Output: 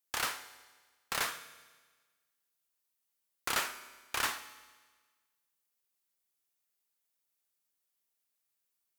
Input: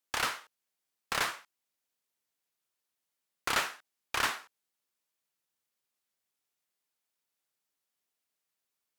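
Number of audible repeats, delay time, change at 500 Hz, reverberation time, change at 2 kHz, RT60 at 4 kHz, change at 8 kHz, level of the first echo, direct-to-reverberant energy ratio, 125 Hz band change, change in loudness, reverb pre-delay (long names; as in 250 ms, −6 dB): no echo audible, no echo audible, −3.5 dB, 1.4 s, −3.0 dB, 1.4 s, +1.0 dB, no echo audible, 11.0 dB, −4.0 dB, −2.5 dB, 8 ms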